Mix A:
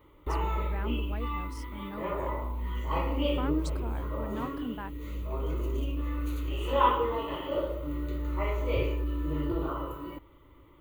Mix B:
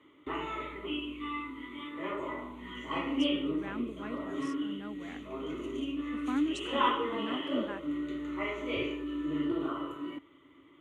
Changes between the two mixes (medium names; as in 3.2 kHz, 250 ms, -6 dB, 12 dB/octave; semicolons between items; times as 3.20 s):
speech: entry +2.90 s; master: add cabinet simulation 220–8800 Hz, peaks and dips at 270 Hz +7 dB, 520 Hz -9 dB, 900 Hz -8 dB, 2 kHz +4 dB, 3.2 kHz +6 dB, 4.6 kHz -9 dB